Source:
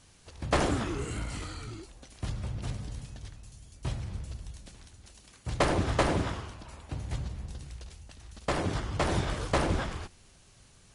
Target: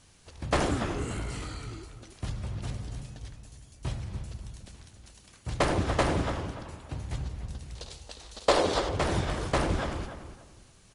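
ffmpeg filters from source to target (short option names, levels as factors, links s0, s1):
-filter_complex "[0:a]asettb=1/sr,asplit=3[s0][s1][s2];[s0]atrim=end=7.754[s3];[s1]atrim=start=7.75:end=8.89,asetpts=PTS-STARTPTS,afade=t=in:d=0.004:c=qsin,afade=t=out:st=1.136:d=0.004:c=qsin,equalizer=f=125:t=o:w=1:g=-11,equalizer=f=500:t=o:w=1:g=11,equalizer=f=1000:t=o:w=1:g=5,equalizer=f=4000:t=o:w=1:g=11,equalizer=f=8000:t=o:w=1:g=5[s4];[s2]atrim=start=8.886[s5];[s3][s4]acrossfade=d=0.004:c1=hsin:c2=qsin[s6];[s6][s5]acrossfade=d=0.004:c1=qsin:c2=hsin,asplit=2[s7][s8];[s8]adelay=291,lowpass=f=2100:p=1,volume=0.355,asplit=2[s9][s10];[s10]adelay=291,lowpass=f=2100:p=1,volume=0.28,asplit=2[s11][s12];[s12]adelay=291,lowpass=f=2100:p=1,volume=0.28[s13];[s9][s11][s13]amix=inputs=3:normalize=0[s14];[s7][s14]amix=inputs=2:normalize=0"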